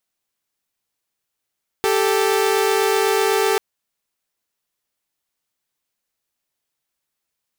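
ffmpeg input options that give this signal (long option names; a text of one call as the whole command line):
ffmpeg -f lavfi -i "aevalsrc='0.158*((2*mod(392*t,1)-1)+(2*mod(440*t,1)-1))':duration=1.74:sample_rate=44100" out.wav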